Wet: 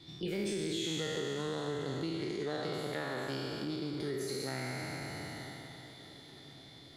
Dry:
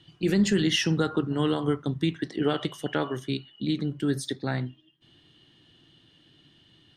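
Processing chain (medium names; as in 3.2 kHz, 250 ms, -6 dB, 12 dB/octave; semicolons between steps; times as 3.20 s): spectral sustain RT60 2.53 s; compression 3:1, threshold -39 dBFS, peak gain reduction 17 dB; on a send: echo that smears into a reverb 977 ms, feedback 53%, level -16 dB; on the sum: formant shift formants +3 st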